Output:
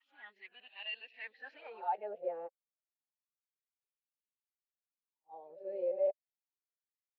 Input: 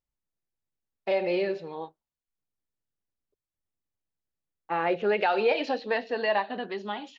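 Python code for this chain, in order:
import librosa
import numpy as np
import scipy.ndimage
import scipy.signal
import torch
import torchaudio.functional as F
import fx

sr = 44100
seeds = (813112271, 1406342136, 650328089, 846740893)

y = x[::-1].copy()
y = fx.dynamic_eq(y, sr, hz=1200.0, q=2.3, threshold_db=-45.0, ratio=4.0, max_db=-5)
y = fx.wah_lfo(y, sr, hz=0.3, low_hz=530.0, high_hz=2800.0, q=8.1)
y = y * librosa.db_to_amplitude(-3.0)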